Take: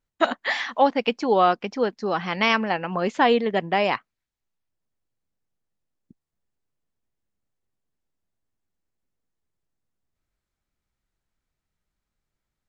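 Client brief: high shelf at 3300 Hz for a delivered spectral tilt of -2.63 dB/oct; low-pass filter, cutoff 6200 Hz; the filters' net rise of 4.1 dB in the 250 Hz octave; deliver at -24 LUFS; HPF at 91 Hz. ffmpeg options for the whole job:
-af "highpass=91,lowpass=6.2k,equalizer=f=250:t=o:g=5,highshelf=f=3.3k:g=5.5,volume=-3dB"

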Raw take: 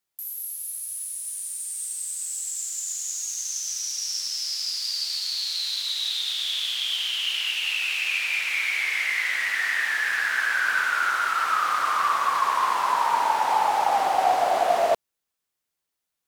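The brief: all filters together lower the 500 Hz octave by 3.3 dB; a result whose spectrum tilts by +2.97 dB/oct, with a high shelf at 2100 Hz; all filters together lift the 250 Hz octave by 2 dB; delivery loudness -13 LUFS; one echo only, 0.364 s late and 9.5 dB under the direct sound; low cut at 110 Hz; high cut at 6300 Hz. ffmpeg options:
-af "highpass=110,lowpass=6.3k,equalizer=f=250:t=o:g=5.5,equalizer=f=500:t=o:g=-7.5,highshelf=f=2.1k:g=9,aecho=1:1:364:0.335,volume=7dB"

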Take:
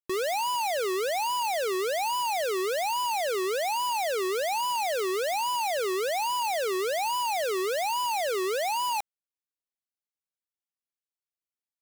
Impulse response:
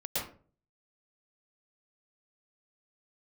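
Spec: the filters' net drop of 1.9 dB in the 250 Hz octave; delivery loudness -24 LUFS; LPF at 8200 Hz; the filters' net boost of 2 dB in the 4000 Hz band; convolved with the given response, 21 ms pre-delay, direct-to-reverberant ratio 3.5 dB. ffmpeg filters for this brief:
-filter_complex "[0:a]lowpass=8.2k,equalizer=f=250:t=o:g=-4.5,equalizer=f=4k:t=o:g=3,asplit=2[a][b];[1:a]atrim=start_sample=2205,adelay=21[c];[b][c]afir=irnorm=-1:irlink=0,volume=-8.5dB[d];[a][d]amix=inputs=2:normalize=0,volume=2dB"

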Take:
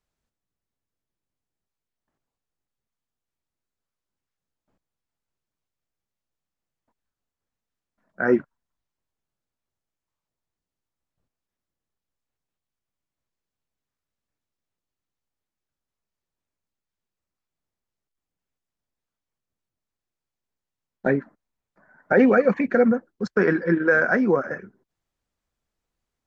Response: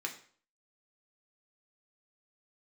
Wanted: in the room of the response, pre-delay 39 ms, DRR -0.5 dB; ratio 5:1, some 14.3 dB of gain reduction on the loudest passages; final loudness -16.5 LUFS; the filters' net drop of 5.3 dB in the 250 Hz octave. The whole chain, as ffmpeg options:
-filter_complex "[0:a]equalizer=f=250:t=o:g=-6.5,acompressor=threshold=-31dB:ratio=5,asplit=2[a][b];[1:a]atrim=start_sample=2205,adelay=39[c];[b][c]afir=irnorm=-1:irlink=0,volume=-1dB[d];[a][d]amix=inputs=2:normalize=0,volume=15.5dB"

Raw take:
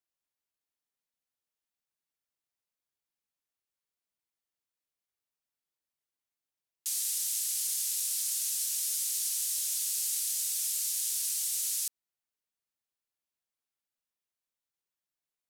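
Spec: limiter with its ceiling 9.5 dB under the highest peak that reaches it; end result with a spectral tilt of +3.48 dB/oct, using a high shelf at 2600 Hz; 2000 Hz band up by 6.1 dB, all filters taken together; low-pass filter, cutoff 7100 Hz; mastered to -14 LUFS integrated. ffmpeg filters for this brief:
-af "lowpass=7.1k,equalizer=f=2k:t=o:g=5.5,highshelf=f=2.6k:g=4.5,volume=22dB,alimiter=limit=-7.5dB:level=0:latency=1"

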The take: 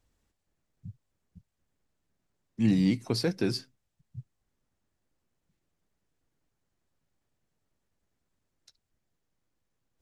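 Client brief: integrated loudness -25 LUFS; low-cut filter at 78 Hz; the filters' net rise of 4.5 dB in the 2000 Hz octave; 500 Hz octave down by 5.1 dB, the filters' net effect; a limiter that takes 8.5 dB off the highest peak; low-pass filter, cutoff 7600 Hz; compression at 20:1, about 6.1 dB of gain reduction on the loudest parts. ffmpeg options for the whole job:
-af "highpass=78,lowpass=7.6k,equalizer=f=500:t=o:g=-7,equalizer=f=2k:t=o:g=6,acompressor=threshold=-26dB:ratio=20,volume=13dB,alimiter=limit=-12.5dB:level=0:latency=1"

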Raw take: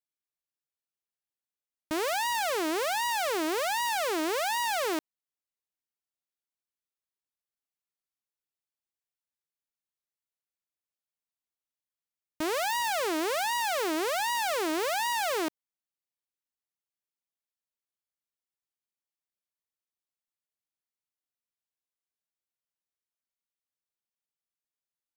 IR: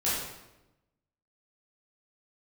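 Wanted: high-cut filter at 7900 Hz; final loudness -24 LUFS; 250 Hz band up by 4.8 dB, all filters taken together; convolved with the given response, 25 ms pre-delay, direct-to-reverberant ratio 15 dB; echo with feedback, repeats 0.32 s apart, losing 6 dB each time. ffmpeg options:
-filter_complex "[0:a]lowpass=7.9k,equalizer=f=250:t=o:g=7.5,aecho=1:1:320|640|960|1280|1600|1920:0.501|0.251|0.125|0.0626|0.0313|0.0157,asplit=2[a][b];[1:a]atrim=start_sample=2205,adelay=25[c];[b][c]afir=irnorm=-1:irlink=0,volume=-24.5dB[d];[a][d]amix=inputs=2:normalize=0,volume=3.5dB"

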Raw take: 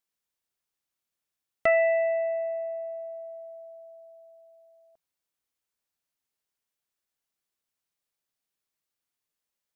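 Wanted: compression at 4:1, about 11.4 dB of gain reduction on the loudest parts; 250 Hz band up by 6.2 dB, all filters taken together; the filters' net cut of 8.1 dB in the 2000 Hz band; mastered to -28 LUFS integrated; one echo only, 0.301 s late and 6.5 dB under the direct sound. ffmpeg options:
-af "equalizer=f=250:t=o:g=8,equalizer=f=2k:t=o:g=-8.5,acompressor=threshold=-34dB:ratio=4,aecho=1:1:301:0.473,volume=10dB"

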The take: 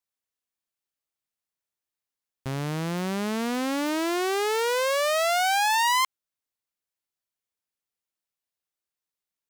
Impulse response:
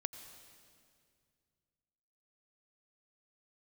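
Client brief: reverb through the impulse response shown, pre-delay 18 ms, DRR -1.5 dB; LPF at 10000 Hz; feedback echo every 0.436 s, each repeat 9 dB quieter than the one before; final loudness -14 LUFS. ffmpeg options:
-filter_complex "[0:a]lowpass=10k,aecho=1:1:436|872|1308|1744:0.355|0.124|0.0435|0.0152,asplit=2[a][b];[1:a]atrim=start_sample=2205,adelay=18[c];[b][c]afir=irnorm=-1:irlink=0,volume=2.5dB[d];[a][d]amix=inputs=2:normalize=0,volume=7dB"

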